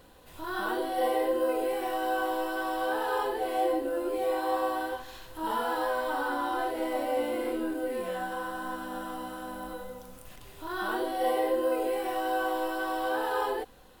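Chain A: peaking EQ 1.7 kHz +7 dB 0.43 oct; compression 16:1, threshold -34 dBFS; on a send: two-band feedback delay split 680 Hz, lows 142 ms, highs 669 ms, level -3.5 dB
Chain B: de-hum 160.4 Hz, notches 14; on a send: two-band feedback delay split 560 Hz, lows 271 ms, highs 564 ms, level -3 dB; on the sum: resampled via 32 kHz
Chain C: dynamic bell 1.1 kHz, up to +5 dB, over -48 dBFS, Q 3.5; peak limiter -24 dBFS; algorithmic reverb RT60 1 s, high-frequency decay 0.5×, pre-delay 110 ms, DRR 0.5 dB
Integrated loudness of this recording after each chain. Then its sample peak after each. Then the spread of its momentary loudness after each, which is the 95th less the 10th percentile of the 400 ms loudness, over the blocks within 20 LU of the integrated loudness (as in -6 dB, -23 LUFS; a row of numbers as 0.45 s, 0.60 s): -36.5 LUFS, -29.0 LUFS, -30.5 LUFS; -23.0 dBFS, -15.5 dBFS, -17.0 dBFS; 4 LU, 9 LU, 8 LU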